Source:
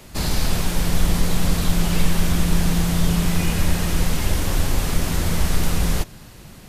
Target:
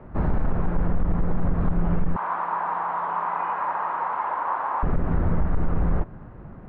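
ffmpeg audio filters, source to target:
ffmpeg -i in.wav -filter_complex "[0:a]asettb=1/sr,asplit=3[link_01][link_02][link_03];[link_01]atrim=end=2.164[link_04];[link_02]atrim=start=2.16:end=4.83,asetpts=PTS-STARTPTS,afade=type=in:duration=0.004:curve=qsin,afade=type=out:start_time=2.666:duration=0.004:curve=qsin,highpass=frequency=960:width_type=q:width=4.9[link_05];[link_03]atrim=start=4.826[link_06];[link_04][link_05]acrossfade=duration=0.004:curve1=hsin:curve2=qsin[link_07];[link_07][link_06]acrossfade=duration=0.004:curve1=qsin:curve2=hsin,acompressor=threshold=-16dB:ratio=6,asoftclip=type=hard:threshold=-16dB,lowpass=frequency=1400:width=0.5412,lowpass=frequency=1400:width=1.3066,volume=1.5dB" out.wav

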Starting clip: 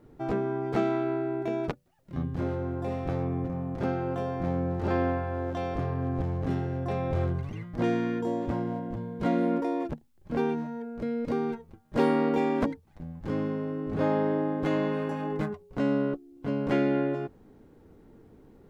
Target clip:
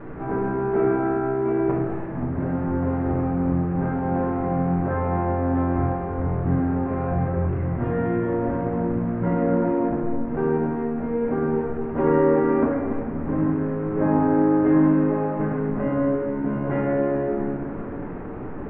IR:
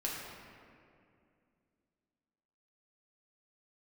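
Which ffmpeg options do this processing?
-filter_complex "[0:a]aeval=exprs='val(0)+0.5*0.0224*sgn(val(0))':channel_layout=same,lowpass=frequency=1900:width=0.5412,lowpass=frequency=1900:width=1.3066,aemphasis=mode=reproduction:type=75kf,bandreject=frequency=47.41:width_type=h:width=4,bandreject=frequency=94.82:width_type=h:width=4,bandreject=frequency=142.23:width_type=h:width=4,bandreject=frequency=189.64:width_type=h:width=4,bandreject=frequency=237.05:width_type=h:width=4,bandreject=frequency=284.46:width_type=h:width=4,bandreject=frequency=331.87:width_type=h:width=4,bandreject=frequency=379.28:width_type=h:width=4,bandreject=frequency=426.69:width_type=h:width=4,bandreject=frequency=474.1:width_type=h:width=4,bandreject=frequency=521.51:width_type=h:width=4,bandreject=frequency=568.92:width_type=h:width=4,bandreject=frequency=616.33:width_type=h:width=4,bandreject=frequency=663.74:width_type=h:width=4,bandreject=frequency=711.15:width_type=h:width=4,bandreject=frequency=758.56:width_type=h:width=4,bandreject=frequency=805.97:width_type=h:width=4[link_01];[1:a]atrim=start_sample=2205[link_02];[link_01][link_02]afir=irnorm=-1:irlink=0,volume=1.5dB"

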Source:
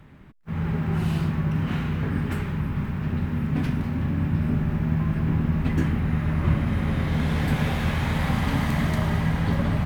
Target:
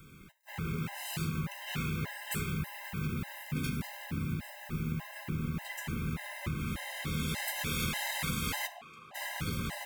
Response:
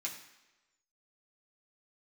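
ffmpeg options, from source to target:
-filter_complex "[0:a]acompressor=threshold=-25dB:ratio=6,crystalizer=i=6.5:c=0,asplit=3[link_01][link_02][link_03];[link_01]afade=type=out:start_time=8.66:duration=0.02[link_04];[link_02]asplit=3[link_05][link_06][link_07];[link_05]bandpass=frequency=730:width_type=q:width=8,volume=0dB[link_08];[link_06]bandpass=frequency=1090:width_type=q:width=8,volume=-6dB[link_09];[link_07]bandpass=frequency=2440:width_type=q:width=8,volume=-9dB[link_10];[link_08][link_09][link_10]amix=inputs=3:normalize=0,afade=type=in:start_time=8.66:duration=0.02,afade=type=out:start_time=9.14:duration=0.02[link_11];[link_03]afade=type=in:start_time=9.14:duration=0.02[link_12];[link_04][link_11][link_12]amix=inputs=3:normalize=0,asplit=2[link_13][link_14];[1:a]atrim=start_sample=2205,afade=type=out:start_time=0.17:duration=0.01,atrim=end_sample=7938[link_15];[link_14][link_15]afir=irnorm=-1:irlink=0,volume=-5dB[link_16];[link_13][link_16]amix=inputs=2:normalize=0,afftfilt=real='re*gt(sin(2*PI*1.7*pts/sr)*(1-2*mod(floor(b*sr/1024/530),2)),0)':imag='im*gt(sin(2*PI*1.7*pts/sr)*(1-2*mod(floor(b*sr/1024/530),2)),0)':win_size=1024:overlap=0.75,volume=-5.5dB"

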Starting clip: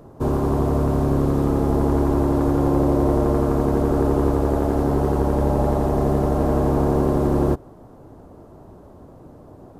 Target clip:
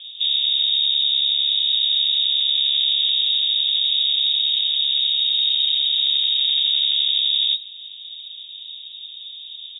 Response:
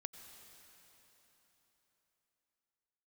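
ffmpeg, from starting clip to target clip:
-filter_complex "[0:a]lowshelf=frequency=490:gain=10.5,asplit=2[link_01][link_02];[link_02]acompressor=threshold=-25dB:ratio=6,volume=2dB[link_03];[link_01][link_03]amix=inputs=2:normalize=0,asoftclip=type=tanh:threshold=-7dB,aecho=1:1:126|252|378|504|630:0.1|0.058|0.0336|0.0195|0.0113,lowpass=frequency=3200:width_type=q:width=0.5098,lowpass=frequency=3200:width_type=q:width=0.6013,lowpass=frequency=3200:width_type=q:width=0.9,lowpass=frequency=3200:width_type=q:width=2.563,afreqshift=-3800,volume=-8dB"

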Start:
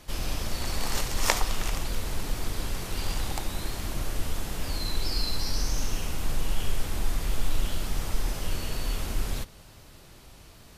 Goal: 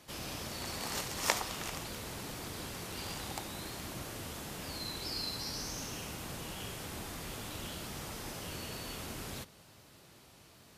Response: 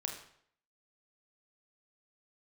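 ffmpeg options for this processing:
-af "highpass=110,volume=-5.5dB"

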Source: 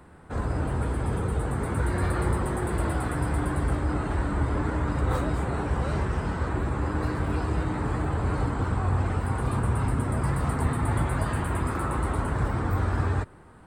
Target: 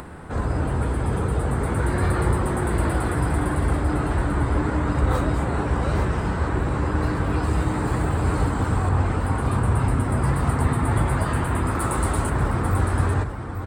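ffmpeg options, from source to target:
ffmpeg -i in.wav -filter_complex "[0:a]asettb=1/sr,asplit=3[link_01][link_02][link_03];[link_01]atrim=end=11.804[link_04];[link_02]atrim=start=11.8:end=12.3,asetpts=PTS-STARTPTS,afade=type=in:duration=0.004:curve=qsin,afade=type=out:start_time=0.496:duration=0.004:curve=qsin,bass=frequency=250:gain=-1,treble=frequency=4000:gain=10[link_05];[link_03]atrim=start=12.296[link_06];[link_04][link_05]acrossfade=duration=0.004:curve1=hsin:curve2=qsin[link_07];[link_07][link_06]acrossfade=duration=0.004:curve1=qsin:curve2=hsin,aecho=1:1:842:0.376,acompressor=mode=upward:threshold=-34dB:ratio=2.5,asettb=1/sr,asplit=3[link_08][link_09][link_10];[link_08]atrim=end=7.434[link_11];[link_09]atrim=start=7.43:end=8.89,asetpts=PTS-STARTPTS,afade=type=in:duration=0.004:curve=qsin,afade=type=out:start_time=1.456:duration=0.004:curve=qsin,highshelf=frequency=8000:gain=11.5[link_12];[link_10]atrim=start=8.886[link_13];[link_11][link_12]acrossfade=duration=0.004:curve1=hsin:curve2=qsin[link_14];[link_14][link_13]acrossfade=duration=0.004:curve1=qsin:curve2=hsin,volume=4dB" out.wav

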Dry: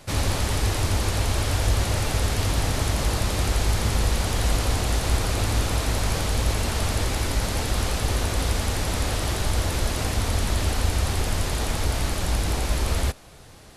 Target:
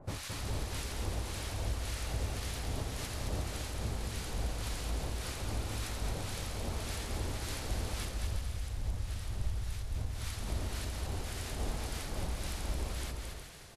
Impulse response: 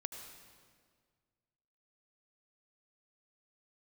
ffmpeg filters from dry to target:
-filter_complex "[0:a]asplit=3[link_01][link_02][link_03];[link_01]afade=type=out:start_time=8.07:duration=0.02[link_04];[link_02]asubboost=boost=3.5:cutoff=150,afade=type=in:start_time=8.07:duration=0.02,afade=type=out:start_time=10.13:duration=0.02[link_05];[link_03]afade=type=in:start_time=10.13:duration=0.02[link_06];[link_04][link_05][link_06]amix=inputs=3:normalize=0,acompressor=threshold=-28dB:ratio=10,acrossover=split=1100[link_07][link_08];[link_07]aeval=exprs='val(0)*(1-1/2+1/2*cos(2*PI*1.8*n/s))':channel_layout=same[link_09];[link_08]aeval=exprs='val(0)*(1-1/2-1/2*cos(2*PI*1.8*n/s))':channel_layout=same[link_10];[link_09][link_10]amix=inputs=2:normalize=0,aecho=1:1:220|363|456|516.4|555.6:0.631|0.398|0.251|0.158|0.1,volume=-2.5dB"

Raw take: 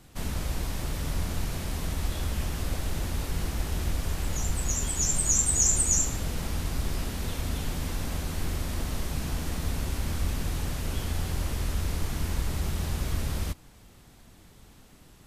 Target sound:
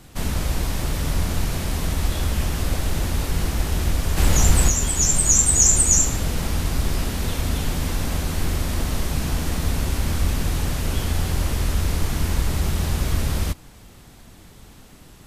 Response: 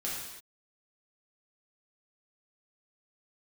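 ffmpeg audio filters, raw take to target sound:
-filter_complex "[0:a]asplit=3[link_01][link_02][link_03];[link_01]afade=type=out:start_time=4.16:duration=0.02[link_04];[link_02]acontrast=44,afade=type=in:start_time=4.16:duration=0.02,afade=type=out:start_time=4.68:duration=0.02[link_05];[link_03]afade=type=in:start_time=4.68:duration=0.02[link_06];[link_04][link_05][link_06]amix=inputs=3:normalize=0,volume=7.5dB"

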